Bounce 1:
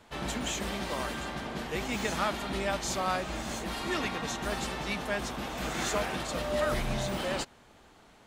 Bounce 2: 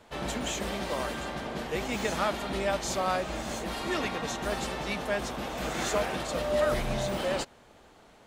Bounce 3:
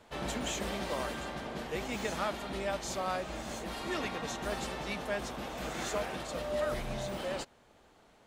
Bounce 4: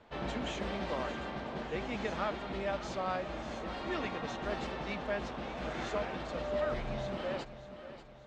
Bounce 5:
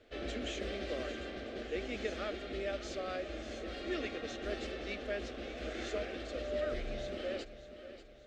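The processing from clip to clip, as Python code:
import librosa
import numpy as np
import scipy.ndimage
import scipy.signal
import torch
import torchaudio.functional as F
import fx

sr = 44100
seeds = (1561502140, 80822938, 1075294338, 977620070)

y1 = fx.peak_eq(x, sr, hz=540.0, db=4.5, octaves=0.92)
y2 = fx.rider(y1, sr, range_db=10, speed_s=2.0)
y2 = y2 * 10.0 ** (-5.5 / 20.0)
y3 = fx.air_absorb(y2, sr, metres=170.0)
y3 = fx.echo_feedback(y3, sr, ms=588, feedback_pct=50, wet_db=-13)
y4 = fx.fixed_phaser(y3, sr, hz=390.0, stages=4)
y4 = y4 * 10.0 ** (1.0 / 20.0)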